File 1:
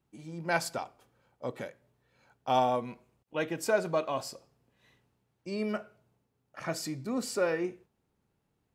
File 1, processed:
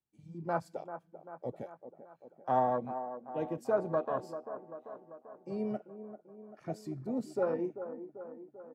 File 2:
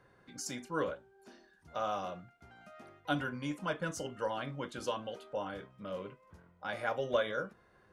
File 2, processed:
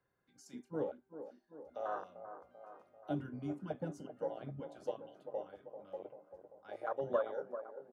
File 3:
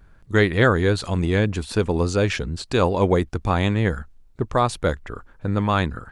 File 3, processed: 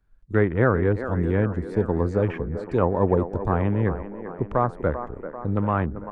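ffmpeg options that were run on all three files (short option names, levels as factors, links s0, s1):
-filter_complex "[0:a]afwtdn=0.0355,acrossover=split=170|1700[s0][s1][s2];[s1]aecho=1:1:391|782|1173|1564|1955|2346|2737:0.316|0.187|0.11|0.0649|0.0383|0.0226|0.0133[s3];[s2]acompressor=threshold=0.00251:ratio=4[s4];[s0][s3][s4]amix=inputs=3:normalize=0,volume=0.794"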